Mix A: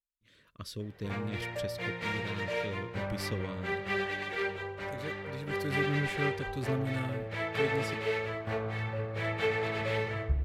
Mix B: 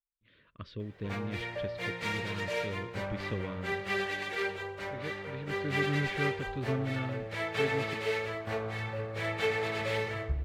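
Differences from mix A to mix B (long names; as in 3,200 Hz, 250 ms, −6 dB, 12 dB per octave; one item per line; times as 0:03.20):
speech: add low-pass filter 3,400 Hz 24 dB per octave
background: add bass and treble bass −3 dB, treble +6 dB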